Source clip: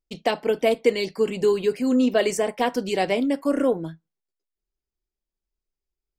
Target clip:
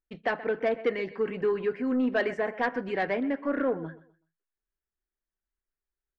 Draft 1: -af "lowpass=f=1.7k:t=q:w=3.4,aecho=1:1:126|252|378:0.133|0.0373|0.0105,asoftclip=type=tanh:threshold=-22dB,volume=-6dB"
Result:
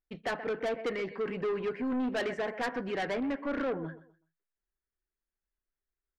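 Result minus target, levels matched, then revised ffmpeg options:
soft clip: distortion +10 dB
-af "lowpass=f=1.7k:t=q:w=3.4,aecho=1:1:126|252|378:0.133|0.0373|0.0105,asoftclip=type=tanh:threshold=-11.5dB,volume=-6dB"

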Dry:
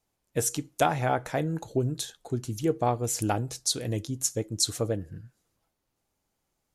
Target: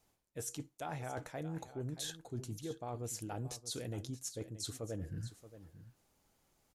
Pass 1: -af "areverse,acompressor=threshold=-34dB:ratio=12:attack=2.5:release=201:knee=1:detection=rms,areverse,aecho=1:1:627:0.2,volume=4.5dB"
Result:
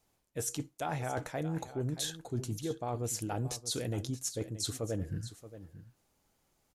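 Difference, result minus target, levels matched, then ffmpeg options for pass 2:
compressor: peak gain reduction -6.5 dB
-af "areverse,acompressor=threshold=-41dB:ratio=12:attack=2.5:release=201:knee=1:detection=rms,areverse,aecho=1:1:627:0.2,volume=4.5dB"

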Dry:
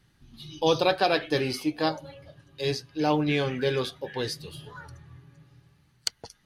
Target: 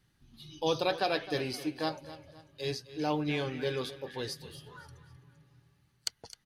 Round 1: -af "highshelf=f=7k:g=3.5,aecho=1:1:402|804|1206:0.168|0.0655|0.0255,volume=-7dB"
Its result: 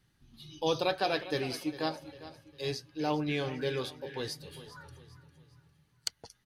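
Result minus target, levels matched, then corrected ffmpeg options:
echo 0.142 s late
-af "highshelf=f=7k:g=3.5,aecho=1:1:260|520|780:0.168|0.0655|0.0255,volume=-7dB"

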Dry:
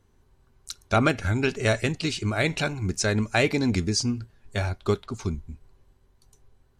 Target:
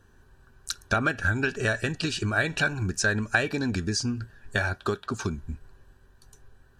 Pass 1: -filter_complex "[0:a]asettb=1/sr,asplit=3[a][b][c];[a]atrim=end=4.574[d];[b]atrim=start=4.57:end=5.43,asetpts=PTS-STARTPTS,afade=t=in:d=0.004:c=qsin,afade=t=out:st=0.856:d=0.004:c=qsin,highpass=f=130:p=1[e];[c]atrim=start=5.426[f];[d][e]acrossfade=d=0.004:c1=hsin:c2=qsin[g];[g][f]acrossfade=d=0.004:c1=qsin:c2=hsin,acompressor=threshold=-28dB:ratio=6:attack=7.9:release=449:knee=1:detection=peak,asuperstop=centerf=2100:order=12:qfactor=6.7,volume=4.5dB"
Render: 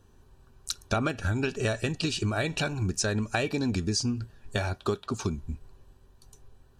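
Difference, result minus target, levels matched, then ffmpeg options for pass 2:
2000 Hz band -6.5 dB
-filter_complex "[0:a]asettb=1/sr,asplit=3[a][b][c];[a]atrim=end=4.574[d];[b]atrim=start=4.57:end=5.43,asetpts=PTS-STARTPTS,afade=t=in:d=0.004:c=qsin,afade=t=out:st=0.856:d=0.004:c=qsin,highpass=f=130:p=1[e];[c]atrim=start=5.426[f];[d][e]acrossfade=d=0.004:c1=hsin:c2=qsin[g];[g][f]acrossfade=d=0.004:c1=qsin:c2=hsin,acompressor=threshold=-28dB:ratio=6:attack=7.9:release=449:knee=1:detection=peak,asuperstop=centerf=2100:order=12:qfactor=6.7,equalizer=f=1.6k:t=o:w=0.42:g=12,volume=4.5dB"

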